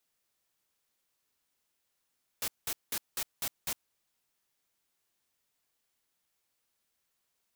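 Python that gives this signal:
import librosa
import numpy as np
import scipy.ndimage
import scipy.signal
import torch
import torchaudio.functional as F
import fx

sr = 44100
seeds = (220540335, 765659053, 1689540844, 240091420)

y = fx.noise_burst(sr, seeds[0], colour='white', on_s=0.06, off_s=0.19, bursts=6, level_db=-33.5)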